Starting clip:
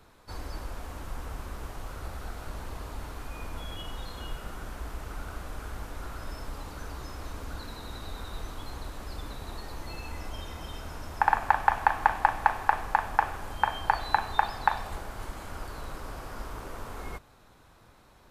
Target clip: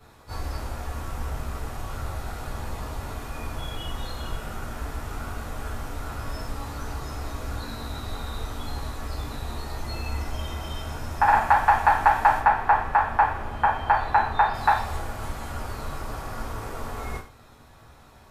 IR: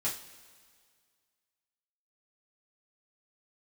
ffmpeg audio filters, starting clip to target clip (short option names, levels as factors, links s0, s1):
-filter_complex "[0:a]asettb=1/sr,asplit=3[s0][s1][s2];[s0]atrim=end=12.394[s3];[s1]atrim=start=12.39:end=14.54,asetpts=PTS-STARTPTS,afade=t=in:d=0.004:c=qsin,afade=t=out:st=2.146:d=0.004:c=qsin,bass=f=250:g=-1,treble=f=4000:g=-13[s4];[s2]atrim=start=14.536[s5];[s3][s4]acrossfade=d=0.004:c1=hsin:c2=qsin[s6];[s6][s5]acrossfade=d=0.004:c1=qsin:c2=hsin[s7];[1:a]atrim=start_sample=2205,atrim=end_sample=6174[s8];[s7][s8]afir=irnorm=-1:irlink=0,volume=1.19"